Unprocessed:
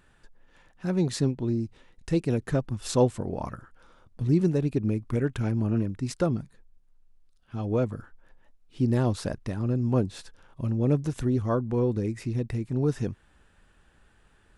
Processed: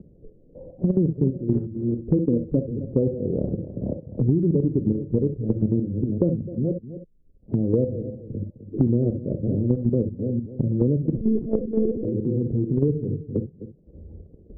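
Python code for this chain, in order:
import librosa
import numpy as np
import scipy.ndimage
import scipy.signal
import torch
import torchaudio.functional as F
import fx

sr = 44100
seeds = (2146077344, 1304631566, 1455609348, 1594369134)

y = fx.reverse_delay(x, sr, ms=281, wet_db=-10.5)
y = fx.highpass(y, sr, hz=86.0, slope=6)
y = fx.noise_reduce_blind(y, sr, reduce_db=13)
y = scipy.signal.sosfilt(scipy.signal.butter(8, 530.0, 'lowpass', fs=sr, output='sos'), y)
y = fx.comb(y, sr, ms=3.8, depth=0.51, at=(2.16, 2.56), fade=0.02)
y = fx.level_steps(y, sr, step_db=13)
y = y + 10.0 ** (-20.0 / 20.0) * np.pad(y, (int(257 * sr / 1000.0), 0))[:len(y)]
y = fx.rev_gated(y, sr, seeds[0], gate_ms=80, shape='rising', drr_db=8.0)
y = fx.lpc_monotone(y, sr, seeds[1], pitch_hz=220.0, order=10, at=(11.15, 12.05))
y = fx.band_squash(y, sr, depth_pct=100)
y = y * librosa.db_to_amplitude(7.5)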